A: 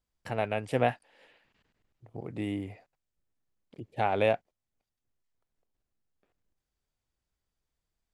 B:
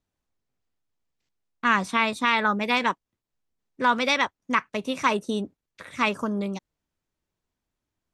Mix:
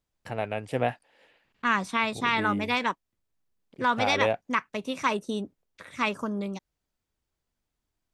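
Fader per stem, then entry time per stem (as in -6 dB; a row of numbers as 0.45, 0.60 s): -0.5, -3.5 dB; 0.00, 0.00 s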